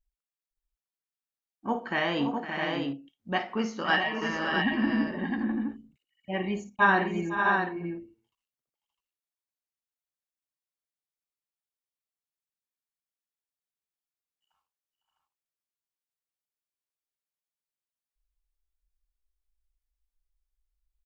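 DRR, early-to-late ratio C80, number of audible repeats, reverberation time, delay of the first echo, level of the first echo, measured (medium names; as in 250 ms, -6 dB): no reverb, no reverb, 4, no reverb, 54 ms, -12.5 dB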